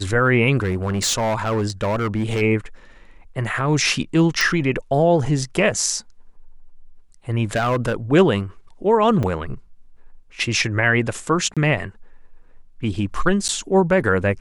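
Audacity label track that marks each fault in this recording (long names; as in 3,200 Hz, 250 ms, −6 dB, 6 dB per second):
0.600000	2.420000	clipping −17 dBFS
4.410000	4.410000	click
7.530000	7.940000	clipping −15.5 dBFS
9.230000	9.230000	drop-out 4.8 ms
11.540000	11.570000	drop-out 26 ms
13.480000	13.490000	drop-out 9.6 ms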